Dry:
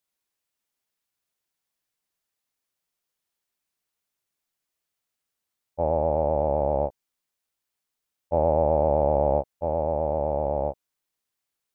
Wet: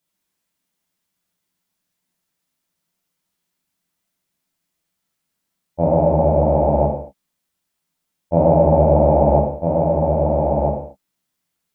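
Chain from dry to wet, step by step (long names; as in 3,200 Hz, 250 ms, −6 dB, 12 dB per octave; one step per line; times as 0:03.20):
parametric band 190 Hz +12 dB 0.9 octaves
reverb whose tail is shaped and stops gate 240 ms falling, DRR −2.5 dB
level +2 dB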